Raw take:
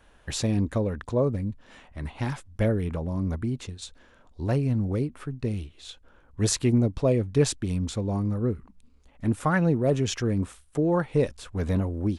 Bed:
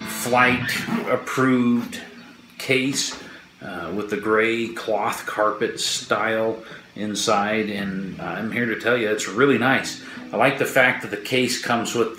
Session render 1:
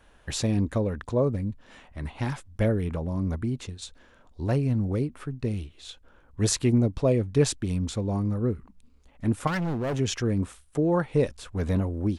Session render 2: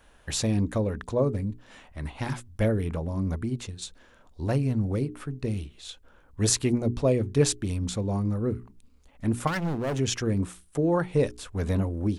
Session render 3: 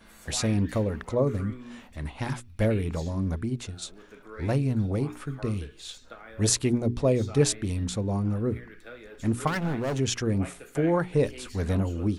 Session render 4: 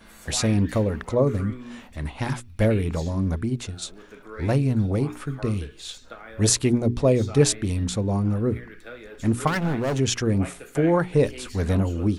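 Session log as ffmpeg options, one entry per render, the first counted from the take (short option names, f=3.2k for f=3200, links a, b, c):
-filter_complex "[0:a]asettb=1/sr,asplit=3[a][b][c];[a]atrim=end=9.474[d];[b]atrim=start=9.47:end=9.99,asetpts=PTS-STARTPTS,afade=t=in:d=0.004:c=qsin,afade=t=out:st=0.516:d=0.004:c=qsin,volume=25.5dB,asoftclip=hard,volume=-25.5dB[e];[c]atrim=start=9.986[f];[d][e]acrossfade=d=0.004:c1=hsin:c2=qsin[g];[g][f]acrossfade=d=0.004:c1=qsin:c2=hsin"
-af "highshelf=f=6.7k:g=5.5,bandreject=f=60:t=h:w=6,bandreject=f=120:t=h:w=6,bandreject=f=180:t=h:w=6,bandreject=f=240:t=h:w=6,bandreject=f=300:t=h:w=6,bandreject=f=360:t=h:w=6,bandreject=f=420:t=h:w=6"
-filter_complex "[1:a]volume=-25dB[a];[0:a][a]amix=inputs=2:normalize=0"
-af "volume=4dB,alimiter=limit=-2dB:level=0:latency=1"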